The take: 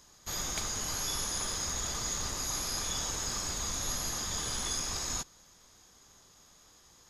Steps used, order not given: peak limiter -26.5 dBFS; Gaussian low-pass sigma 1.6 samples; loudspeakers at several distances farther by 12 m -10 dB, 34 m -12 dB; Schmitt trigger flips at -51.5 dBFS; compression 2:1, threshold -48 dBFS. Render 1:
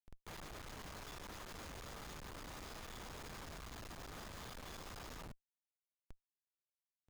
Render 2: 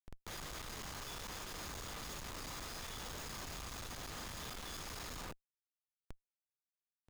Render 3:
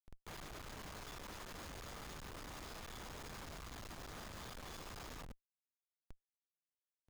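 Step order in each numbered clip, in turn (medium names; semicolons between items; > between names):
loudspeakers at several distances > peak limiter > compression > Gaussian low-pass > Schmitt trigger; loudspeakers at several distances > peak limiter > Gaussian low-pass > Schmitt trigger > compression; peak limiter > loudspeakers at several distances > compression > Gaussian low-pass > Schmitt trigger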